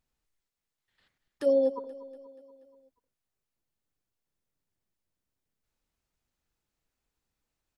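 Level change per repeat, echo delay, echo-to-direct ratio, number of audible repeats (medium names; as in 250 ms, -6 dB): -5.0 dB, 240 ms, -16.0 dB, 4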